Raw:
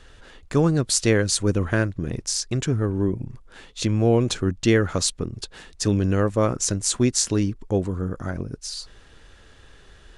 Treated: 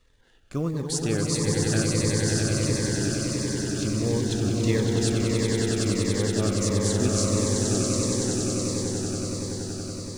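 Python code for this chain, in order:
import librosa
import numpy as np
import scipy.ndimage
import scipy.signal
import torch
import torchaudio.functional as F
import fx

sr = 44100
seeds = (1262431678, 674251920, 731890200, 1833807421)

y = fx.law_mismatch(x, sr, coded='A')
y = fx.echo_swell(y, sr, ms=94, loudest=8, wet_db=-5.0)
y = fx.notch_cascade(y, sr, direction='falling', hz=1.5)
y = y * librosa.db_to_amplitude(-7.5)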